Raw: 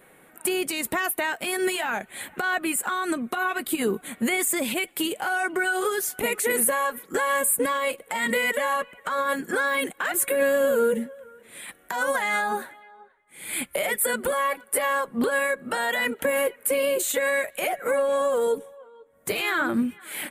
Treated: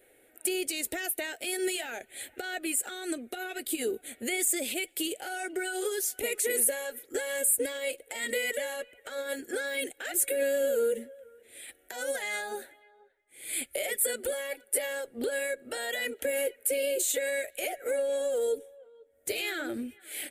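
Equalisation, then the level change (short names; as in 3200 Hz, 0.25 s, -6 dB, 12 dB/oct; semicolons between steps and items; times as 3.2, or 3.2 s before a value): dynamic EQ 6300 Hz, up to +5 dB, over -42 dBFS, Q 0.73; fixed phaser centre 440 Hz, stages 4; -5.0 dB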